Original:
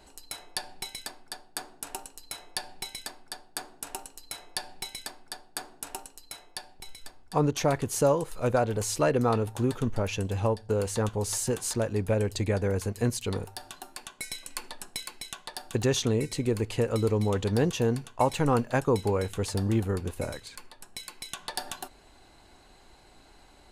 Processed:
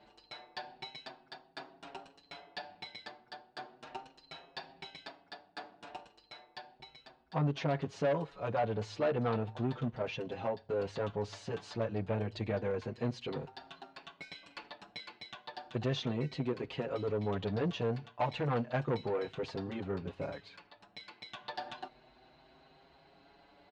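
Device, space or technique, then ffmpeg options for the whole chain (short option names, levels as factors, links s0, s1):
barber-pole flanger into a guitar amplifier: -filter_complex "[0:a]asplit=2[s0][s1];[s1]adelay=6.4,afreqshift=0.33[s2];[s0][s2]amix=inputs=2:normalize=1,asoftclip=type=tanh:threshold=0.0531,highpass=78,equalizer=f=83:t=q:w=4:g=-10,equalizer=f=150:t=q:w=4:g=4,equalizer=f=660:t=q:w=4:g=5,lowpass=f=4100:w=0.5412,lowpass=f=4100:w=1.3066,volume=0.794"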